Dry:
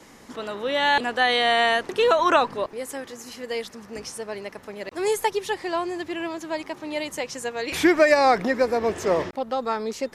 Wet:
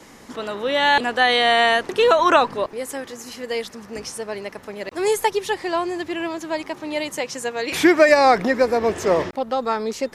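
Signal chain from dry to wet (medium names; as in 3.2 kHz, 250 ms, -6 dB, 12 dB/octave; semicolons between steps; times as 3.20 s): 7.09–8.09 s: high-pass 100 Hz; trim +3.5 dB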